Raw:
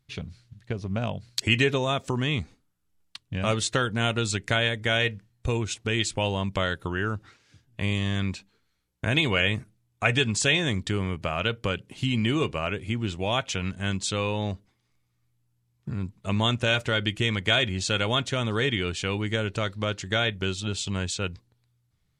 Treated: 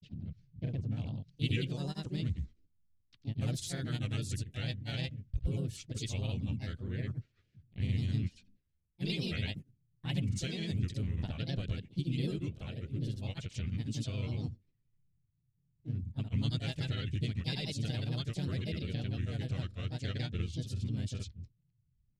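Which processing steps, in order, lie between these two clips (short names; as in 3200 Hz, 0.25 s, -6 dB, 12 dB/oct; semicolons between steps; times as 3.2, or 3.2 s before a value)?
low-pass opened by the level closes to 2100 Hz, open at -21.5 dBFS; passive tone stack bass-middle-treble 10-0-1; grains, pitch spread up and down by 3 st; harmoniser +4 st -5 dB, +5 st -12 dB; gain +7 dB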